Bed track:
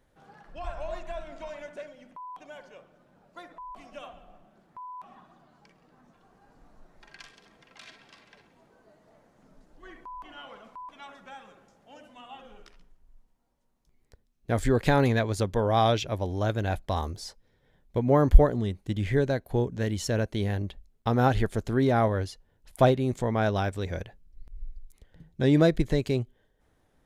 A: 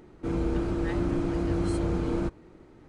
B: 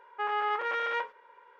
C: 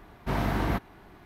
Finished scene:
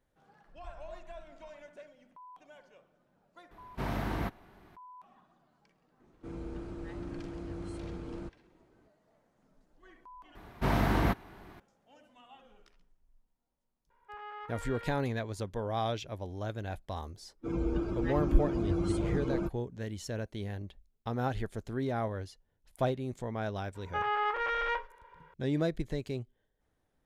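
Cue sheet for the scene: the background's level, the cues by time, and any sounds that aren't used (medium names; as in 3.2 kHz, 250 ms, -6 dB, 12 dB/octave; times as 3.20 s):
bed track -10 dB
3.51 s: add C -6.5 dB
6.00 s: add A -13.5 dB
10.35 s: replace with C
13.90 s: add B -15 dB
17.20 s: add A -0.5 dB + expander on every frequency bin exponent 2
23.75 s: add B -1 dB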